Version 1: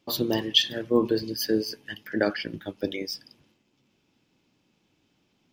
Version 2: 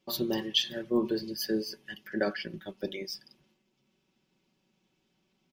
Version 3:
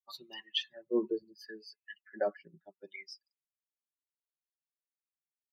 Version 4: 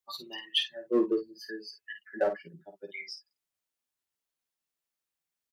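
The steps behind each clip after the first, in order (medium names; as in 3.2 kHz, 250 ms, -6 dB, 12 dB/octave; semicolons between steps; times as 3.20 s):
comb 5.3 ms; trim -6.5 dB
expander on every frequency bin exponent 2; wah-wah 0.71 Hz 460–2700 Hz, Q 2.1; trim +4 dB
in parallel at -5 dB: hard clipper -29 dBFS, distortion -10 dB; on the sum: early reflections 12 ms -6.5 dB, 52 ms -8.5 dB; trim +1.5 dB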